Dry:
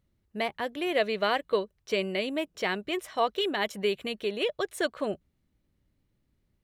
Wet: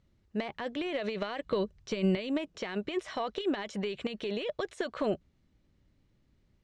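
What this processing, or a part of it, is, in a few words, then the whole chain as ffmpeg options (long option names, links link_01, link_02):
de-esser from a sidechain: -filter_complex "[0:a]asplit=2[link_01][link_02];[link_02]highpass=frequency=5700:poles=1,apad=whole_len=292546[link_03];[link_01][link_03]sidechaincompress=threshold=-48dB:ratio=10:attack=1.3:release=30,lowpass=frequency=7100:width=0.5412,lowpass=frequency=7100:width=1.3066,asettb=1/sr,asplit=3[link_04][link_05][link_06];[link_04]atrim=end=1.464[link_07];[link_05]atrim=start=1.46:end=2.17,asetpts=PTS-STARTPTS,afade=type=in:duration=0.004:curve=qsin,afade=type=out:start_time=0.706:duration=0.004:curve=qsin,bass=frequency=250:gain=9,treble=frequency=4000:gain=2[link_08];[link_06]atrim=start=2.166[link_09];[link_07][link_08]acrossfade=duration=0.004:curve1=hsin:curve2=qsin[link_10];[link_10][link_09]acrossfade=duration=0.004:curve1=qsin:curve2=hsin,volume=4.5dB"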